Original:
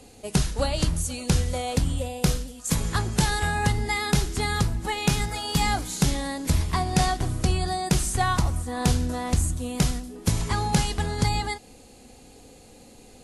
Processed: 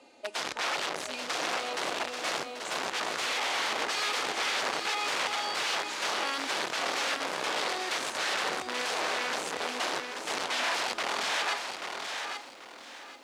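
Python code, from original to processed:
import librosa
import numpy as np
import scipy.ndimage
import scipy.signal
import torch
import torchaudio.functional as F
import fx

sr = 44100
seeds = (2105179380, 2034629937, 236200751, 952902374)

y = fx.high_shelf(x, sr, hz=2500.0, db=-9.0)
y = y + 0.72 * np.pad(y, (int(3.3 * sr / 1000.0), 0))[:len(y)]
y = fx.dynamic_eq(y, sr, hz=1300.0, q=4.8, threshold_db=-50.0, ratio=4.0, max_db=7)
y = (np.mod(10.0 ** (23.5 / 20.0) * y + 1.0, 2.0) - 1.0) / 10.0 ** (23.5 / 20.0)
y = fx.bandpass_edges(y, sr, low_hz=560.0, high_hz=5100.0)
y = y + 10.0 ** (-6.5 / 20.0) * np.pad(y, (int(836 * sr / 1000.0), 0))[:len(y)]
y = fx.echo_crushed(y, sr, ms=785, feedback_pct=35, bits=10, wet_db=-11.0)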